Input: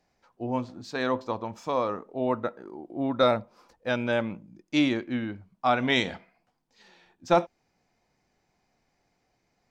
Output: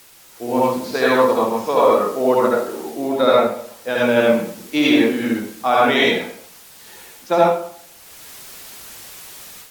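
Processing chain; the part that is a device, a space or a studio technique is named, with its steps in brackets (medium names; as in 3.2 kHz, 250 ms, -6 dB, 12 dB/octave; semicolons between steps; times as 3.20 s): filmed off a television (band-pass 220–6400 Hz; peaking EQ 450 Hz +7 dB 0.29 oct; reverberation RT60 0.65 s, pre-delay 64 ms, DRR -5.5 dB; white noise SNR 23 dB; level rider gain up to 10 dB; trim -1 dB; AAC 96 kbps 44.1 kHz)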